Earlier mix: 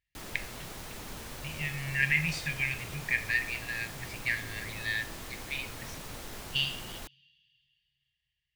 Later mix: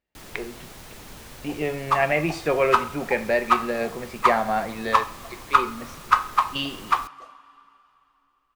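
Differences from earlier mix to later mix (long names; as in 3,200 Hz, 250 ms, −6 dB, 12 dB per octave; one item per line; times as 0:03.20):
speech: remove linear-phase brick-wall band-stop 170–1,600 Hz
second sound: unmuted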